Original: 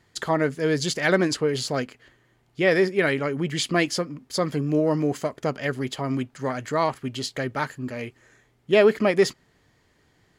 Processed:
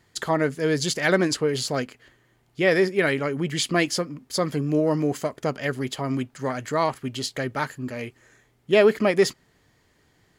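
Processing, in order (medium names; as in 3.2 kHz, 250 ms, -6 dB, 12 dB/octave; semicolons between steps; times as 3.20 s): treble shelf 9 kHz +6 dB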